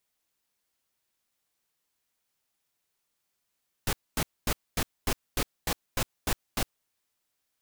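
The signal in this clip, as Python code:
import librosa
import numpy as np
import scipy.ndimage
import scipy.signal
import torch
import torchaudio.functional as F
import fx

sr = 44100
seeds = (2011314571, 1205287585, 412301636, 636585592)

y = fx.noise_burst(sr, seeds[0], colour='pink', on_s=0.06, off_s=0.24, bursts=10, level_db=-27.0)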